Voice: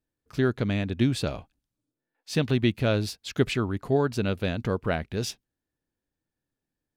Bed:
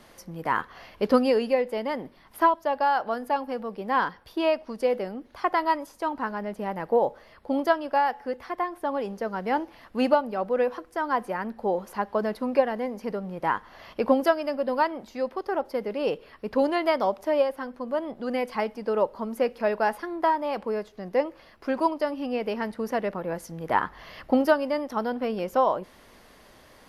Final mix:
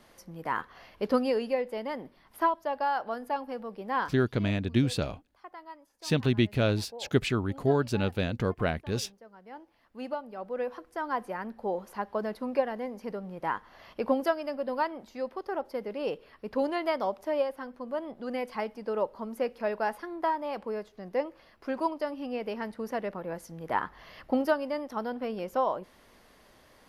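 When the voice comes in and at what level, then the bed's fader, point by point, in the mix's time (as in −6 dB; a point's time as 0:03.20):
3.75 s, −1.5 dB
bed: 0:04.03 −5.5 dB
0:04.23 −22 dB
0:09.38 −22 dB
0:10.88 −5.5 dB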